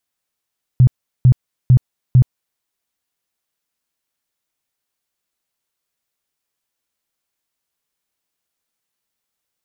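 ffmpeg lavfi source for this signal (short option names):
-f lavfi -i "aevalsrc='0.562*sin(2*PI*126*mod(t,0.45))*lt(mod(t,0.45),9/126)':d=1.8:s=44100"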